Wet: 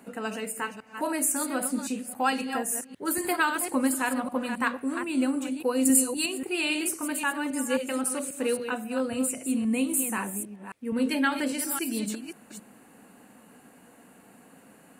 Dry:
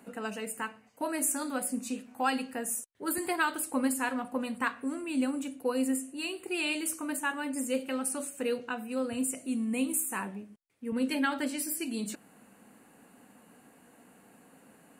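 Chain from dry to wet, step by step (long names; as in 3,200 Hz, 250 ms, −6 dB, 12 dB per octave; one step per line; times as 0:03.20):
delay that plays each chunk backwards 268 ms, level −8 dB
0:05.85–0:06.26: bass and treble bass +9 dB, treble +13 dB
level +3.5 dB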